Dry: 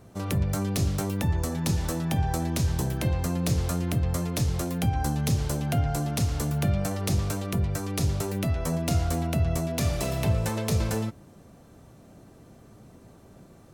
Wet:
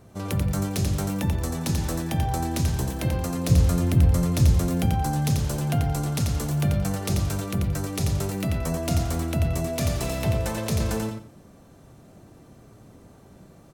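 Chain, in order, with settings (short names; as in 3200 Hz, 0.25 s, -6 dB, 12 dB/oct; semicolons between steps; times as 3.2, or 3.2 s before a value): 3.5–4.86 low shelf 160 Hz +11 dB; feedback echo 88 ms, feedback 22%, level -4.5 dB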